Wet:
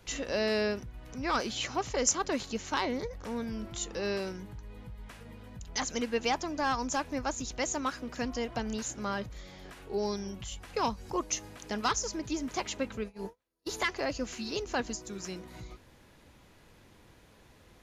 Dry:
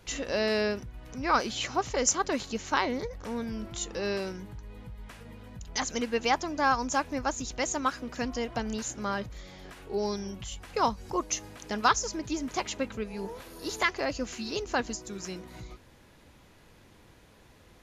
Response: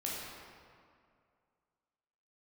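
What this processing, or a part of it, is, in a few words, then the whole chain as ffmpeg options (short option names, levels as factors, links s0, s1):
one-band saturation: -filter_complex "[0:a]acrossover=split=520|2600[s0][s1][s2];[s1]asoftclip=type=tanh:threshold=0.0596[s3];[s0][s3][s2]amix=inputs=3:normalize=0,asplit=3[s4][s5][s6];[s4]afade=t=out:st=13.02:d=0.02[s7];[s5]agate=range=0.0112:threshold=0.0178:ratio=16:detection=peak,afade=t=in:st=13.02:d=0.02,afade=t=out:st=13.69:d=0.02[s8];[s6]afade=t=in:st=13.69:d=0.02[s9];[s7][s8][s9]amix=inputs=3:normalize=0,volume=0.841"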